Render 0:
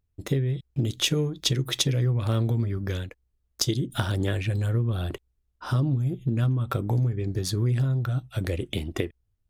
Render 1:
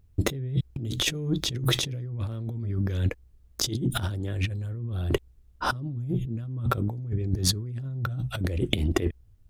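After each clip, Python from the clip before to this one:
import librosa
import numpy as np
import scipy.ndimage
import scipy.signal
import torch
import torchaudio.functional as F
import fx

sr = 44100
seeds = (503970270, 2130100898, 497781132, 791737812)

y = fx.low_shelf(x, sr, hz=410.0, db=8.0)
y = fx.over_compress(y, sr, threshold_db=-29.0, ratio=-1.0)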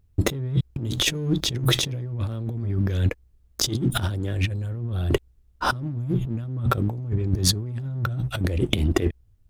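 y = fx.leveller(x, sr, passes=1)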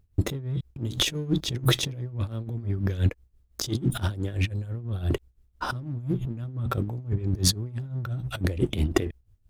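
y = x * (1.0 - 0.7 / 2.0 + 0.7 / 2.0 * np.cos(2.0 * np.pi * 5.9 * (np.arange(len(x)) / sr)))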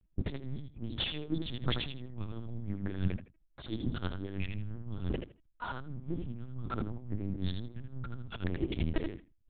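y = fx.echo_feedback(x, sr, ms=78, feedback_pct=18, wet_db=-6.0)
y = fx.lpc_vocoder(y, sr, seeds[0], excitation='pitch_kept', order=8)
y = F.gain(torch.from_numpy(y), -8.5).numpy()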